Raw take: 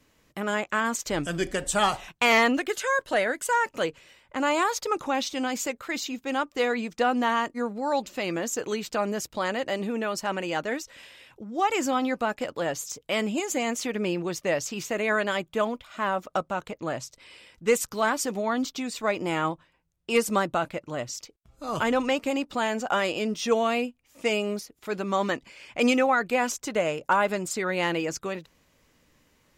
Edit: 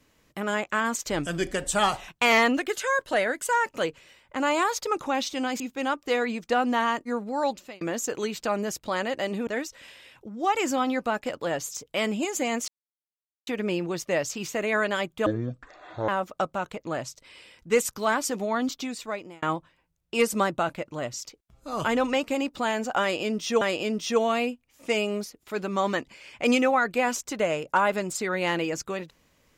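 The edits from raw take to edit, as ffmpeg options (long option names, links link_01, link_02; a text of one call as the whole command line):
ffmpeg -i in.wav -filter_complex "[0:a]asplit=9[link_01][link_02][link_03][link_04][link_05][link_06][link_07][link_08][link_09];[link_01]atrim=end=5.602[link_10];[link_02]atrim=start=6.088:end=8.3,asetpts=PTS-STARTPTS,afade=type=out:start_time=1.862:duration=0.35[link_11];[link_03]atrim=start=8.3:end=9.962,asetpts=PTS-STARTPTS,afade=type=in:duration=0.004:curve=hsin[link_12];[link_04]atrim=start=10.618:end=13.83,asetpts=PTS-STARTPTS,afade=type=out:start_time=3.208:duration=0.004:curve=hsin,apad=pad_dur=0.79[link_13];[link_05]atrim=start=13.83:end=15.624,asetpts=PTS-STARTPTS,afade=type=in:duration=0.004:curve=hsin[link_14];[link_06]atrim=start=15.62:end=16.04,asetpts=PTS-STARTPTS,asetrate=22491,aresample=44100[link_15];[link_07]atrim=start=16.036:end=19.38,asetpts=PTS-STARTPTS,afade=type=out:start_time=2.724:duration=0.62[link_16];[link_08]atrim=start=19.38:end=23.572,asetpts=PTS-STARTPTS,afade=type=in:duration=0.004:curve=hsin[link_17];[link_09]atrim=start=22.968[link_18];[link_11][link_12]concat=n=2:v=0:a=1[link_19];[link_10][link_19]acrossfade=duration=0.004:curve1=hsin:curve2=hsin[link_20];[link_13][link_14]concat=n=2:v=0:a=1[link_21];[link_20][link_21]acrossfade=duration=0.004:curve1=hsin:curve2=hsin[link_22];[link_22][link_15]acrossfade=duration=0.004:curve1=hsin:curve2=hsin[link_23];[link_16][link_17]concat=n=2:v=0:a=1[link_24];[link_23][link_24]acrossfade=duration=0.004:curve1=hsin:curve2=hsin[link_25];[link_25][link_18]acrossfade=duration=0.004:curve1=hsin:curve2=hsin" out.wav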